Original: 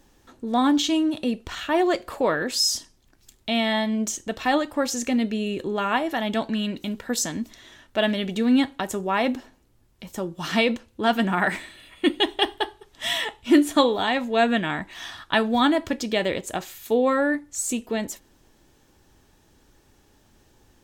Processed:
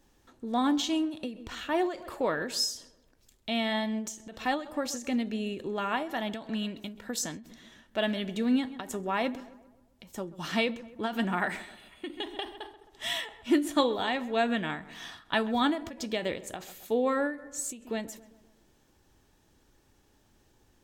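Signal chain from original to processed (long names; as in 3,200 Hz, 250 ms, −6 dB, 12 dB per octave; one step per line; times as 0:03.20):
feedback echo with a low-pass in the loop 132 ms, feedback 51%, low-pass 2,000 Hz, level −17 dB
every ending faded ahead of time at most 130 dB per second
level −6.5 dB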